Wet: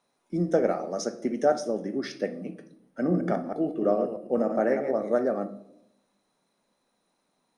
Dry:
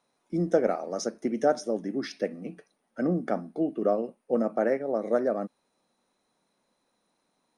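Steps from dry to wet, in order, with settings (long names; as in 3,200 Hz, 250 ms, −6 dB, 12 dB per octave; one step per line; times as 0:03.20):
0:03.00–0:05.03: delay that plays each chunk backwards 106 ms, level −6 dB
convolution reverb RT60 0.75 s, pre-delay 5 ms, DRR 9 dB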